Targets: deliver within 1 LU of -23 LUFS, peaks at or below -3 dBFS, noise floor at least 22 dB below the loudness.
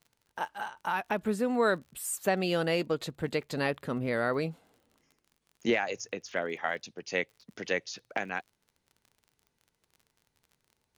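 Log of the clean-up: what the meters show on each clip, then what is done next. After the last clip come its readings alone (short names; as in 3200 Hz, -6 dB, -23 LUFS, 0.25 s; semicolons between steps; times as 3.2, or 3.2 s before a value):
ticks 41/s; loudness -32.0 LUFS; peak -16.0 dBFS; loudness target -23.0 LUFS
-> de-click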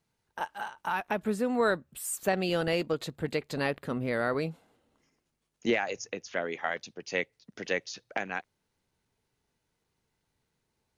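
ticks 0/s; loudness -32.0 LUFS; peak -16.0 dBFS; loudness target -23.0 LUFS
-> gain +9 dB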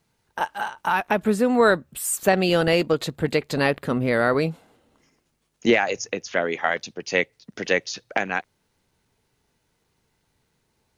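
loudness -23.0 LUFS; peak -7.0 dBFS; noise floor -72 dBFS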